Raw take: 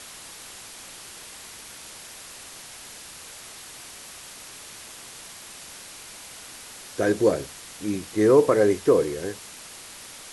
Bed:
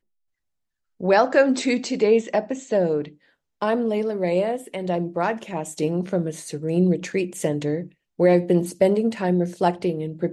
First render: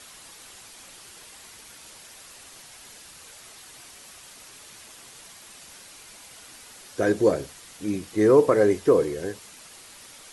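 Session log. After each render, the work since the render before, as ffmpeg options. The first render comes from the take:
-af "afftdn=nr=6:nf=-43"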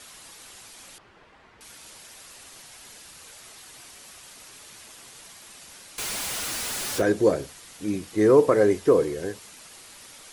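-filter_complex "[0:a]asettb=1/sr,asplit=3[s0][s1][s2];[s0]atrim=end=0.984[s3];[s1]atrim=start=0.98:end=1.61,asetpts=PTS-STARTPTS,afade=t=in:d=0.004:c=qsin,afade=t=out:st=0.626:d=0.004:c=qsin,lowpass=1700[s4];[s2]atrim=start=1.606[s5];[s3][s4]acrossfade=d=0.004:c1=hsin:c2=qsin[s6];[s6][s5]acrossfade=d=0.004:c1=qsin:c2=hsin,asettb=1/sr,asplit=3[s7][s8][s9];[s7]atrim=end=5.984[s10];[s8]atrim=start=5.98:end=7.02,asetpts=PTS-STARTPTS,afade=t=in:d=0.004:c=qsin,afade=t=out:st=1.036:d=0.004:c=qsin,aeval=exprs='val(0)+0.5*0.0501*sgn(val(0))':c=same[s11];[s9]atrim=start=7.016[s12];[s10][s11]acrossfade=d=0.004:c1=hsin:c2=qsin[s13];[s13][s12]acrossfade=d=0.004:c1=qsin:c2=hsin"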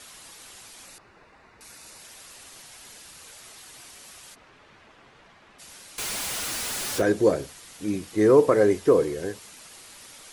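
-filter_complex "[0:a]asettb=1/sr,asplit=3[s0][s1][s2];[s0]atrim=end=0.854[s3];[s1]atrim=start=0.85:end=2.01,asetpts=PTS-STARTPTS,afade=t=in:d=0.004:c=qsin,afade=t=out:st=1.156:d=0.004:c=qsin,bandreject=f=3200:w=5.3[s4];[s2]atrim=start=2.006[s5];[s3][s4]acrossfade=d=0.004:c1=hsin:c2=qsin[s6];[s6][s5]acrossfade=d=0.004:c1=qsin:c2=hsin,asplit=3[s7][s8][s9];[s7]afade=t=out:st=4.34:d=0.02[s10];[s8]lowpass=2000,afade=t=in:st=4.34:d=0.02,afade=t=out:st=5.58:d=0.02[s11];[s9]afade=t=in:st=5.58:d=0.02[s12];[s10][s11][s12]amix=inputs=3:normalize=0"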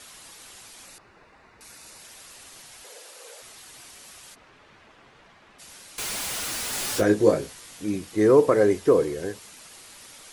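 -filter_complex "[0:a]asettb=1/sr,asplit=3[s0][s1][s2];[s0]atrim=end=2.844[s3];[s1]atrim=start=2.84:end=3.42,asetpts=PTS-STARTPTS,afade=t=in:d=0.004:c=qsin,afade=t=out:st=0.576:d=0.004:c=qsin,highpass=f=490:t=q:w=5.1[s4];[s2]atrim=start=3.416[s5];[s3][s4]acrossfade=d=0.004:c1=hsin:c2=qsin[s6];[s6][s5]acrossfade=d=0.004:c1=qsin:c2=hsin,asettb=1/sr,asplit=3[s7][s8][s9];[s7]atrim=end=6.714[s10];[s8]atrim=start=6.71:end=7.82,asetpts=PTS-STARTPTS,afade=t=in:d=0.004:c=qsin,afade=t=out:st=1.106:d=0.004:c=qsin,asplit=2[s11][s12];[s12]adelay=19,volume=0.631[s13];[s11][s13]amix=inputs=2:normalize=0,atrim=end_sample=48951[s14];[s9]atrim=start=7.816[s15];[s10][s14]acrossfade=d=0.004:c1=hsin:c2=qsin[s16];[s16][s15]acrossfade=d=0.004:c1=qsin:c2=hsin"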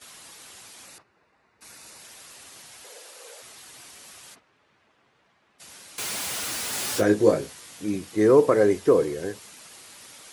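-af "agate=range=0.282:threshold=0.00316:ratio=16:detection=peak,highpass=76"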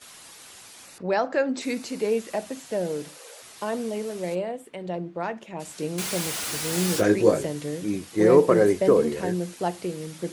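-filter_complex "[1:a]volume=0.447[s0];[0:a][s0]amix=inputs=2:normalize=0"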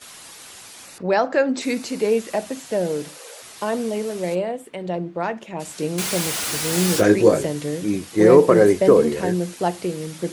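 -af "volume=1.78,alimiter=limit=0.794:level=0:latency=1"

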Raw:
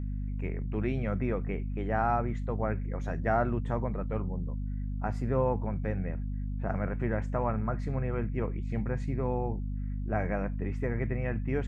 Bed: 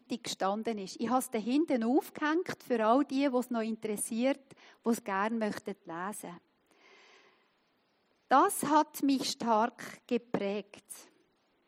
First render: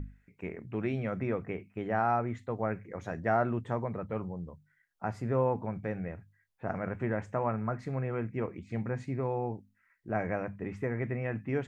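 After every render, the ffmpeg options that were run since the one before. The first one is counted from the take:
-af "bandreject=f=50:t=h:w=6,bandreject=f=100:t=h:w=6,bandreject=f=150:t=h:w=6,bandreject=f=200:t=h:w=6,bandreject=f=250:t=h:w=6"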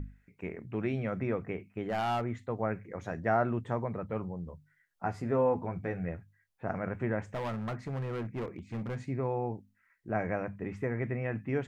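-filter_complex "[0:a]asettb=1/sr,asplit=3[s0][s1][s2];[s0]atrim=end=1.824[s3];[s1]atrim=start=1.82:end=2.24,asetpts=PTS-STARTPTS,afade=t=in:d=0.004:c=qsin,afade=t=out:st=0.416:d=0.004:c=qsin,asoftclip=type=hard:threshold=0.0447[s4];[s2]atrim=start=2.236[s5];[s3][s4]acrossfade=d=0.004:c1=hsin:c2=qsin[s6];[s6][s5]acrossfade=d=0.004:c1=qsin:c2=hsin,asettb=1/sr,asplit=3[s7][s8][s9];[s7]atrim=end=4.454[s10];[s8]atrim=start=4.45:end=6.18,asetpts=PTS-STARTPTS,afade=t=in:d=0.004:c=qsin,afade=t=out:st=1.726:d=0.004:c=qsin,asplit=2[s11][s12];[s12]adelay=12,volume=0.531[s13];[s11][s13]amix=inputs=2:normalize=0,atrim=end_sample=76293[s14];[s9]atrim=start=6.176[s15];[s10][s14]acrossfade=d=0.004:c1=hsin:c2=qsin[s16];[s16][s15]acrossfade=d=0.004:c1=qsin:c2=hsin,asettb=1/sr,asplit=3[s17][s18][s19];[s17]atrim=end=7.324[s20];[s18]atrim=start=7.32:end=9,asetpts=PTS-STARTPTS,afade=t=in:d=0.004:c=qsin,afade=t=out:st=1.676:d=0.004:c=qsin,asoftclip=type=hard:threshold=0.0251[s21];[s19]atrim=start=8.996[s22];[s20][s21]acrossfade=d=0.004:c1=hsin:c2=qsin[s23];[s23][s22]acrossfade=d=0.004:c1=qsin:c2=hsin"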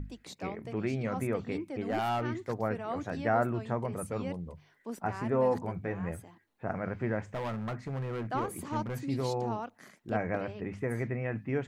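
-filter_complex "[1:a]volume=0.316[s0];[0:a][s0]amix=inputs=2:normalize=0"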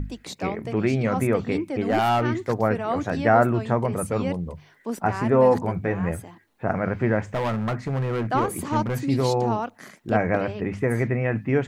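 -af "volume=3.16"

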